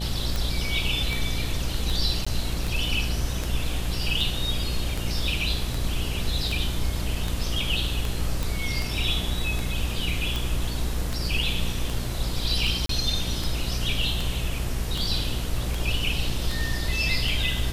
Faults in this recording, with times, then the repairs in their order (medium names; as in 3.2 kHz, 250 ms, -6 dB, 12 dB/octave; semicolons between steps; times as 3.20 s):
buzz 60 Hz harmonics 12 -30 dBFS
tick 78 rpm
2.25–2.27 s: dropout 15 ms
8.43 s: pop
12.86–12.89 s: dropout 33 ms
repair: de-click; de-hum 60 Hz, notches 12; interpolate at 2.25 s, 15 ms; interpolate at 12.86 s, 33 ms